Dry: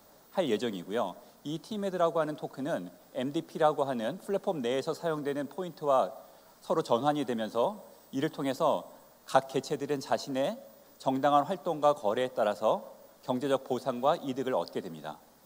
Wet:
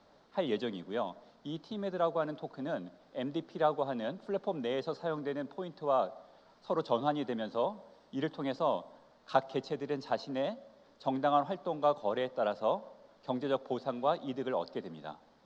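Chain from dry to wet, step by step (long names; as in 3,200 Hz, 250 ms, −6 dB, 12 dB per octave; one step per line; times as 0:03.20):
low-pass filter 4,700 Hz 24 dB per octave
level −3.5 dB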